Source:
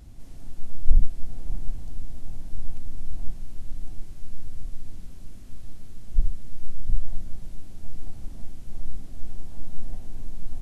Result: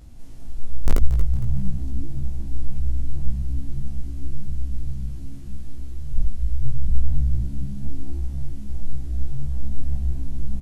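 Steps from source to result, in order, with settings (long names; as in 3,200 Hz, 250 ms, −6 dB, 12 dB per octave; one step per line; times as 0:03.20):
peak hold with a rise ahead of every peak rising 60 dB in 0.30 s
in parallel at −8 dB: wrap-around overflow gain 5.5 dB
on the sum: echo with shifted repeats 230 ms, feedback 47%, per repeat −69 Hz, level −12.5 dB
chorus effect 1.8 Hz, delay 16 ms, depth 2.4 ms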